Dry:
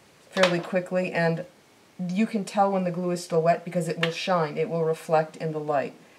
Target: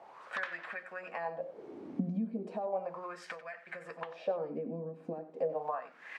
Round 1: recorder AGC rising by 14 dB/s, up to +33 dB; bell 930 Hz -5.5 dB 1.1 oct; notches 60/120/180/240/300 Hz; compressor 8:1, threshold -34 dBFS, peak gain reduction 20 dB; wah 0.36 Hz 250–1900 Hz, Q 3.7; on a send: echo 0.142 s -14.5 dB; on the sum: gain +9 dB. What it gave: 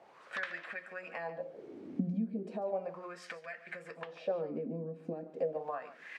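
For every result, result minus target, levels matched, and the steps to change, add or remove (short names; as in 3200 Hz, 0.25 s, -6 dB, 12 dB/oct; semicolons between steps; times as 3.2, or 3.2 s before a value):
echo 49 ms late; 1000 Hz band -3.5 dB
change: echo 93 ms -14.5 dB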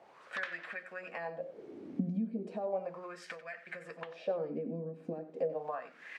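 1000 Hz band -3.5 dB
change: bell 930 Hz +2.5 dB 1.1 oct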